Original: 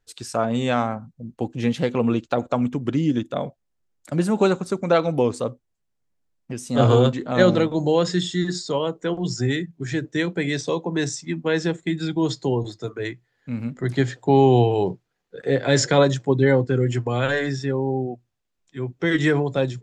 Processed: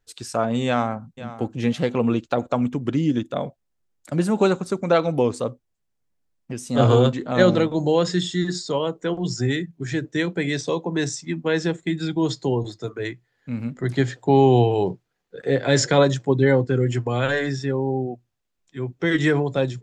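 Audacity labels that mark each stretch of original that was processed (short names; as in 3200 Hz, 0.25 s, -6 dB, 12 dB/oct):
0.660000	1.110000	echo throw 0.51 s, feedback 20%, level -15 dB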